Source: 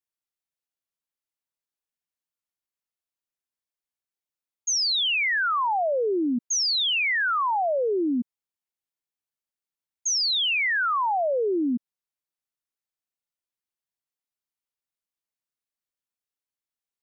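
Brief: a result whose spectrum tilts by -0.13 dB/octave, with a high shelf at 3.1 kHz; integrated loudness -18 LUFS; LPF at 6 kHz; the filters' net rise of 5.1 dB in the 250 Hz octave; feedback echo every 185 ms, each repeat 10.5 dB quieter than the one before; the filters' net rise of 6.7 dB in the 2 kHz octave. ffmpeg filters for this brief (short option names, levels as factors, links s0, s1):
-af "lowpass=6000,equalizer=f=250:t=o:g=6,equalizer=f=2000:t=o:g=6.5,highshelf=f=3100:g=5,aecho=1:1:185|370|555:0.299|0.0896|0.0269"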